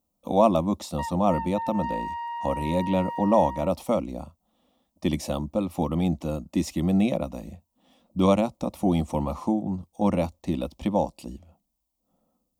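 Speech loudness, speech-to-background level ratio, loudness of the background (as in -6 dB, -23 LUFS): -26.0 LUFS, 8.0 dB, -34.0 LUFS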